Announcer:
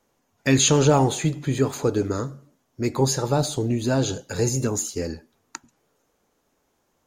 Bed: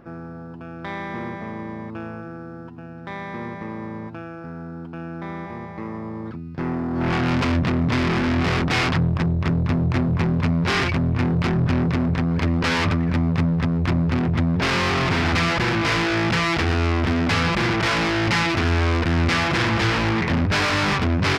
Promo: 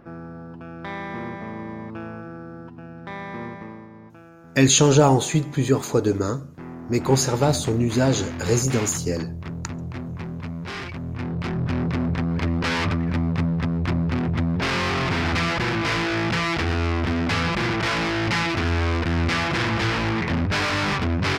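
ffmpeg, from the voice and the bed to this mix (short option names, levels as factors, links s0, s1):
-filter_complex "[0:a]adelay=4100,volume=1.26[s0];[1:a]volume=2.37,afade=t=out:st=3.43:d=0.45:silence=0.316228,afade=t=in:st=10.96:d=1.06:silence=0.354813[s1];[s0][s1]amix=inputs=2:normalize=0"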